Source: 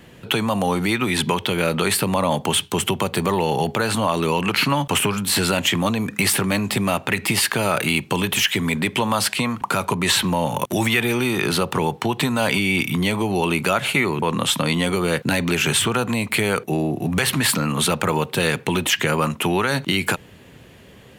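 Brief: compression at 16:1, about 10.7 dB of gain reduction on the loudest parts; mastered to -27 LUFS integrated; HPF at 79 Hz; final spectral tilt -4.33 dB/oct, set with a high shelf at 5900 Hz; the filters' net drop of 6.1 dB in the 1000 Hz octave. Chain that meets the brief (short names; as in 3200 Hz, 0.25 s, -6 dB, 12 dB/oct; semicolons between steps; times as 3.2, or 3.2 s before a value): HPF 79 Hz; bell 1000 Hz -7.5 dB; high shelf 5900 Hz -7.5 dB; compressor 16:1, threshold -28 dBFS; gain +5 dB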